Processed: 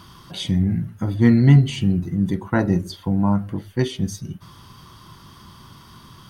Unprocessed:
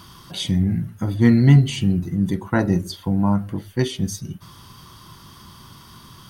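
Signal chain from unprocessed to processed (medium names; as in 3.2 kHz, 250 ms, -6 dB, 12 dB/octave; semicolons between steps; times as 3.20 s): treble shelf 4.9 kHz -6 dB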